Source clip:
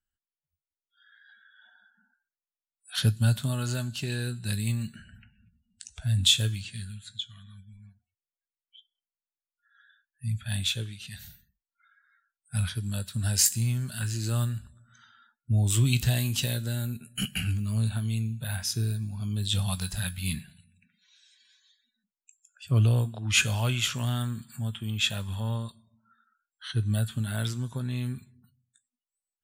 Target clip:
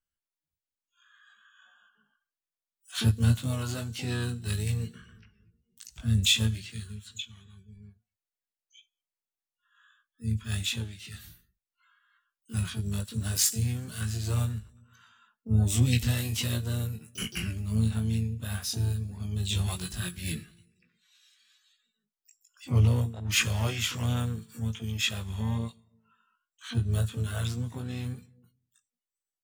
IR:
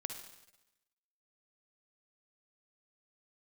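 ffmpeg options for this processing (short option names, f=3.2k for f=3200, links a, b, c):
-filter_complex "[0:a]flanger=delay=16.5:depth=2.4:speed=1.2,asplit=3[a][b][c];[b]asetrate=33038,aresample=44100,atempo=1.33484,volume=-9dB[d];[c]asetrate=88200,aresample=44100,atempo=0.5,volume=-10dB[e];[a][d][e]amix=inputs=3:normalize=0"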